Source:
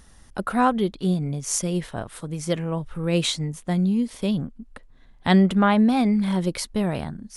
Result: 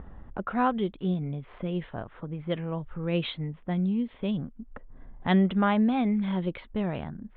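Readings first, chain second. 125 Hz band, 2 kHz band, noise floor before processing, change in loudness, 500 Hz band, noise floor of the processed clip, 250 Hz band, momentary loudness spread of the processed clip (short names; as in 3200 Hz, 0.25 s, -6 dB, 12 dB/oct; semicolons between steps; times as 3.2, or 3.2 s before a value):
-5.5 dB, -5.5 dB, -52 dBFS, -6.0 dB, -5.5 dB, -52 dBFS, -5.5 dB, 14 LU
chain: steep low-pass 3600 Hz 72 dB/oct; low-pass opened by the level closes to 960 Hz, open at -16 dBFS; upward compressor, threshold -26 dBFS; gain -5.5 dB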